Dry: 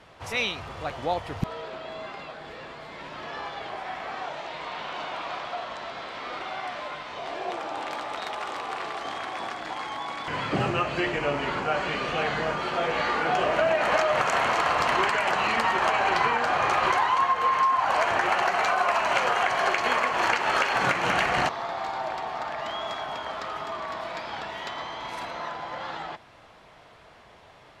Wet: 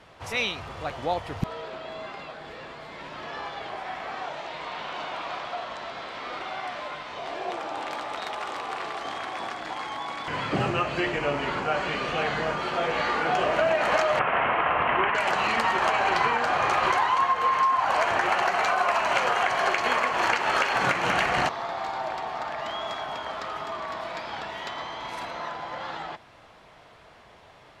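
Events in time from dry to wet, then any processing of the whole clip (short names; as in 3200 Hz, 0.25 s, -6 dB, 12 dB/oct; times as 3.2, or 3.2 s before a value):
14.19–15.15 steep low-pass 3000 Hz 48 dB/oct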